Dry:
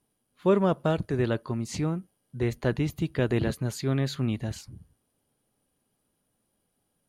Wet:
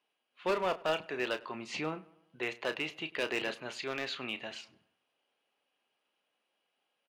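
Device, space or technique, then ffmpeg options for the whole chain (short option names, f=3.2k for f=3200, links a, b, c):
megaphone: -filter_complex "[0:a]asettb=1/sr,asplit=3[a][b][c];[a]atrim=end=1.544[d];[b]atrim=start=1.54:end=2.36,asetpts=PTS-STARTPTS,afade=t=in:d=0.004:c=qsin,afade=t=out:st=0.816:d=0.004:c=qsin,lowshelf=f=340:g=8[e];[c]atrim=start=2.356[f];[d][e]acrossfade=d=0.004:c1=hsin:c2=qsin[g];[g][f]acrossfade=d=0.004:c1=qsin:c2=hsin,highpass=630,lowpass=3.8k,equalizer=f=2.7k:t=o:w=0.53:g=10,asoftclip=type=hard:threshold=-25.5dB,asplit=2[h][i];[i]adelay=32,volume=-11dB[j];[h][j]amix=inputs=2:normalize=0,asplit=2[k][l];[l]adelay=100,lowpass=f=2.7k:p=1,volume=-21dB,asplit=2[m][n];[n]adelay=100,lowpass=f=2.7k:p=1,volume=0.51,asplit=2[o][p];[p]adelay=100,lowpass=f=2.7k:p=1,volume=0.51,asplit=2[q][r];[r]adelay=100,lowpass=f=2.7k:p=1,volume=0.51[s];[k][m][o][q][s]amix=inputs=5:normalize=0"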